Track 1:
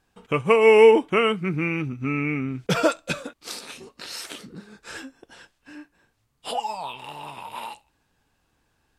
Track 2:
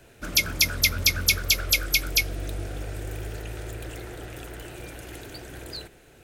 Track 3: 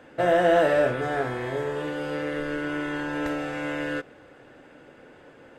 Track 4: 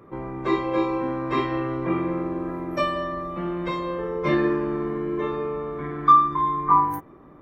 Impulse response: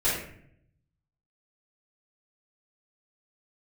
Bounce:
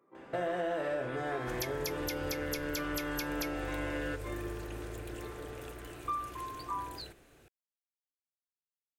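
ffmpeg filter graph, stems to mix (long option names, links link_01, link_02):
-filter_complex "[1:a]acompressor=threshold=-27dB:ratio=6,adelay=1250,volume=-8dB[link_01];[2:a]acompressor=threshold=-34dB:ratio=1.5,adelay=150,volume=-3.5dB[link_02];[3:a]highpass=270,volume=-19dB[link_03];[link_01][link_02][link_03]amix=inputs=3:normalize=0,acompressor=threshold=-31dB:ratio=4"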